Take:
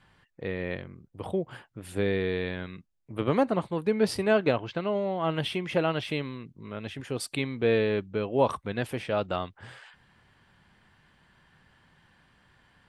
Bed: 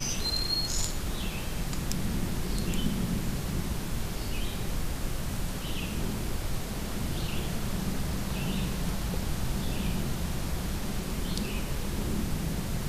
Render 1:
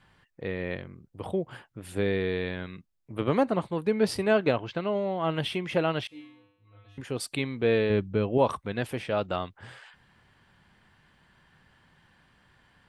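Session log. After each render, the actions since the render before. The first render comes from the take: 6.07–6.98 s: feedback comb 100 Hz, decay 0.8 s, harmonics odd, mix 100%; 7.90–8.38 s: bass shelf 250 Hz +9 dB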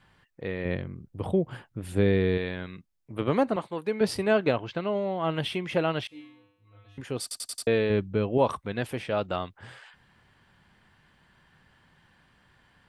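0.65–2.38 s: bass shelf 340 Hz +8.5 dB; 3.56–4.01 s: high-pass 370 Hz 6 dB/octave; 7.22 s: stutter in place 0.09 s, 5 plays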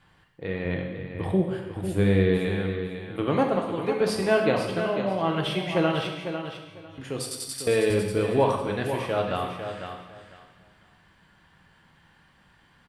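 feedback delay 500 ms, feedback 19%, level -8.5 dB; gated-style reverb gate 340 ms falling, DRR 1.5 dB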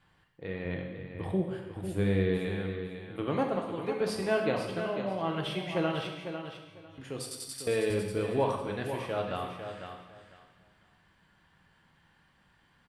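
trim -6.5 dB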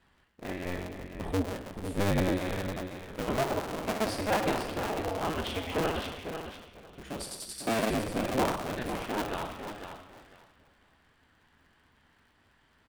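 cycle switcher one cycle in 2, inverted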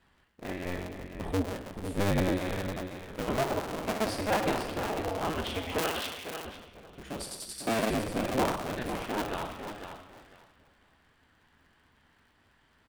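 5.78–6.45 s: tilt EQ +2.5 dB/octave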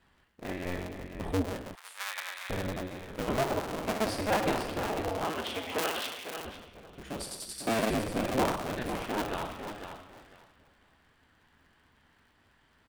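1.75–2.50 s: high-pass 1.1 kHz 24 dB/octave; 5.24–6.37 s: high-pass 290 Hz 6 dB/octave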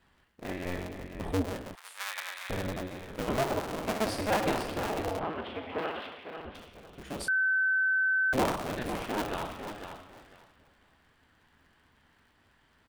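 5.19–6.55 s: distance through air 430 m; 7.28–8.33 s: bleep 1.53 kHz -23.5 dBFS

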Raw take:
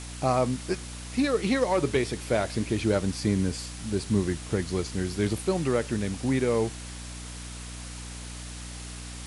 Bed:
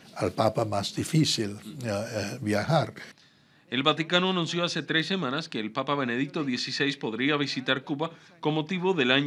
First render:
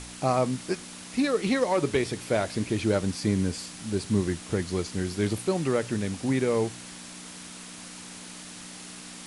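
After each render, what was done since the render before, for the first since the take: de-hum 60 Hz, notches 2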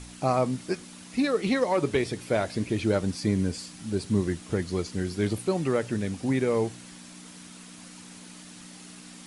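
noise reduction 6 dB, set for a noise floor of -43 dBFS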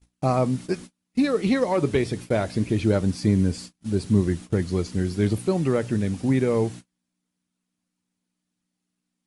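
gate -39 dBFS, range -38 dB; bass shelf 310 Hz +7.5 dB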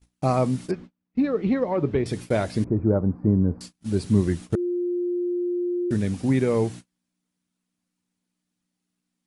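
0.71–2.06 s: tape spacing loss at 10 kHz 35 dB; 2.64–3.61 s: inverse Chebyshev low-pass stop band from 3 kHz, stop band 50 dB; 4.55–5.91 s: bleep 353 Hz -22.5 dBFS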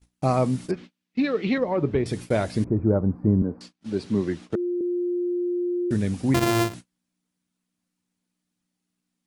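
0.77–1.58 s: frequency weighting D; 3.42–4.81 s: three-band isolator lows -13 dB, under 200 Hz, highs -16 dB, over 5.7 kHz; 6.34–6.74 s: sorted samples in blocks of 128 samples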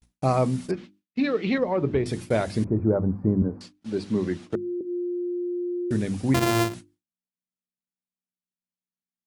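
hum notches 50/100/150/200/250/300/350 Hz; gate with hold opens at -52 dBFS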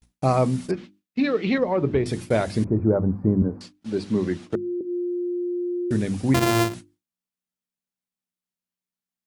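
trim +2 dB

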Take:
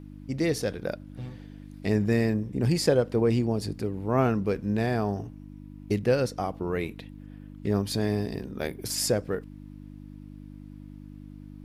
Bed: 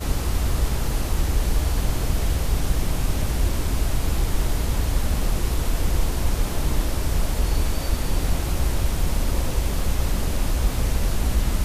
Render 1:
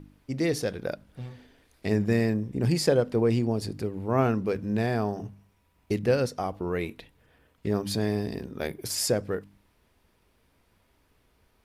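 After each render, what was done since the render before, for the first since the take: de-hum 50 Hz, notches 6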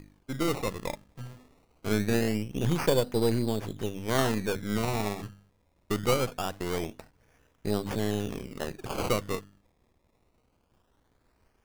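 partial rectifier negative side -7 dB; decimation with a swept rate 20×, swing 100% 0.23 Hz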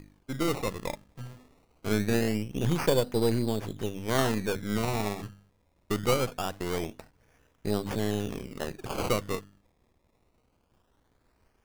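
no audible change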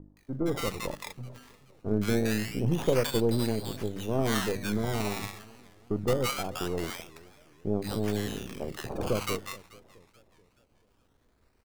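bands offset in time lows, highs 170 ms, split 930 Hz; modulated delay 429 ms, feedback 42%, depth 186 cents, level -21.5 dB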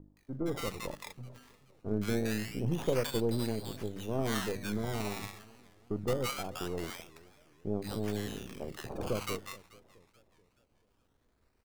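trim -5 dB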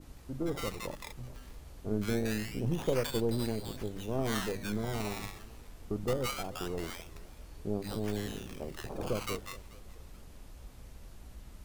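add bed -28 dB

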